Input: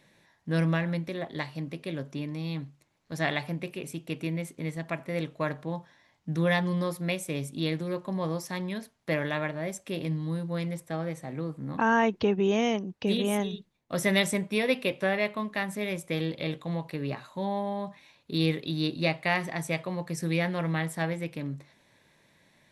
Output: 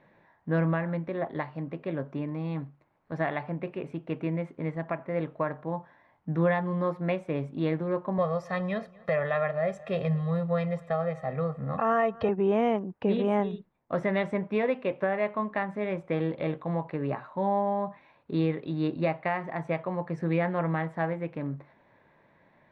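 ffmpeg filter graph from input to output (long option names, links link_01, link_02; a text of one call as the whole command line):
ffmpeg -i in.wav -filter_complex "[0:a]asettb=1/sr,asplit=3[link_01][link_02][link_03];[link_01]atrim=end=8.184[link_04];[link_02]atrim=start=8.18:end=12.29,asetpts=PTS-STARTPTS,afade=type=in:duration=0.004:curve=qsin,afade=type=out:start_time=4.106:duration=0.004:curve=qsin,highshelf=frequency=3300:gain=10,aecho=1:1:1.6:1,atrim=end_sample=181251,asplit=2[link_05][link_06];[link_06]adelay=239,lowpass=frequency=4500:poles=1,volume=-24dB,asplit=2[link_07][link_08];[link_08]adelay=239,lowpass=frequency=4500:poles=1,volume=0.46,asplit=2[link_09][link_10];[link_10]adelay=239,lowpass=frequency=4500:poles=1,volume=0.46[link_11];[link_05][link_07][link_09][link_11]amix=inputs=4:normalize=0,atrim=end_sample=181251[link_12];[link_03]atrim=start=12.286[link_13];[link_04][link_12]acrossfade=duration=0.004:curve1=hsin:curve2=qsin[link_14];[link_14][link_13]acrossfade=duration=0.004:curve1=qsin:curve2=hsin,lowpass=1600,equalizer=frequency=950:width_type=o:width=2.4:gain=6.5,alimiter=limit=-16.5dB:level=0:latency=1:release=467" out.wav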